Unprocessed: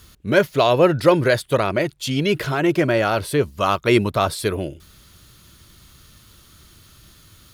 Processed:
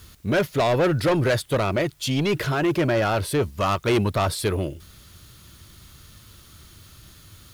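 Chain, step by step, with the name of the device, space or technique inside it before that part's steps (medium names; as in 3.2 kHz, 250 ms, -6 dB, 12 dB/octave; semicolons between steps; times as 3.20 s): open-reel tape (saturation -16 dBFS, distortion -10 dB; peaking EQ 91 Hz +4 dB 0.85 oct; white noise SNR 37 dB)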